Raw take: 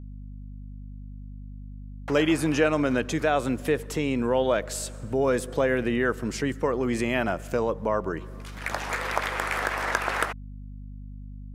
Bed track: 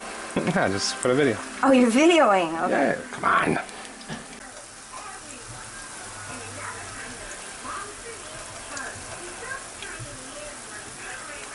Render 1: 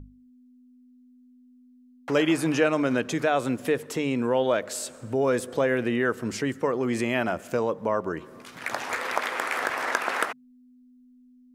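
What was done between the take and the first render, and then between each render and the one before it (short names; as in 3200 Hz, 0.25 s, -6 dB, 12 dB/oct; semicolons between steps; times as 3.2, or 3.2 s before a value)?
notches 50/100/150/200 Hz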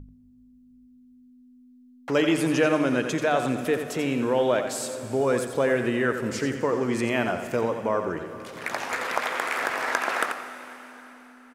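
echo 87 ms -8.5 dB; plate-style reverb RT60 3.9 s, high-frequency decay 0.95×, pre-delay 0.105 s, DRR 11 dB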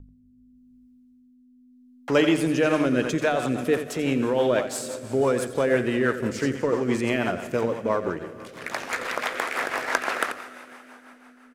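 in parallel at -5.5 dB: crossover distortion -33.5 dBFS; on the sum: rotary speaker horn 0.85 Hz, later 6 Hz, at 2.38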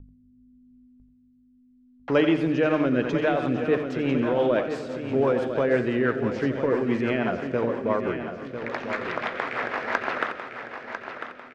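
air absorption 240 m; feedback echo 0.998 s, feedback 44%, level -9 dB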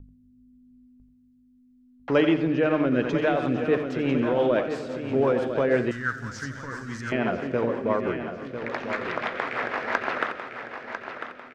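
2.34–2.92 air absorption 120 m; 5.91–7.12 EQ curve 100 Hz 0 dB, 190 Hz -10 dB, 270 Hz -12 dB, 400 Hz -21 dB, 730 Hz -16 dB, 1500 Hz +4 dB, 2500 Hz -12 dB, 6000 Hz +13 dB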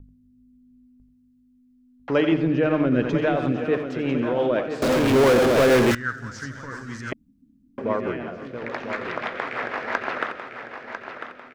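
2.32–3.52 low shelf 200 Hz +7.5 dB; 4.82–5.95 power-law curve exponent 0.35; 7.13–7.78 room tone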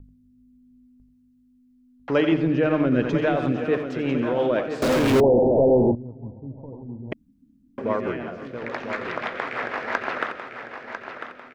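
5.2–7.12 steep low-pass 900 Hz 96 dB/oct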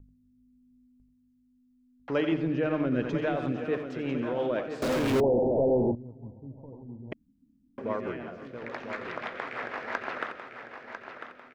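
gain -7 dB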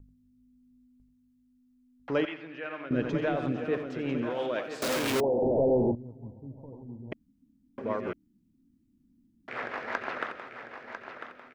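2.25–2.91 band-pass 2100 Hz, Q 0.92; 4.3–5.42 tilt +2.5 dB/oct; 8.13–9.48 room tone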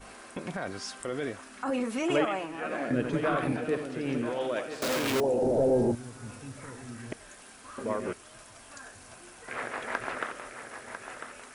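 add bed track -13 dB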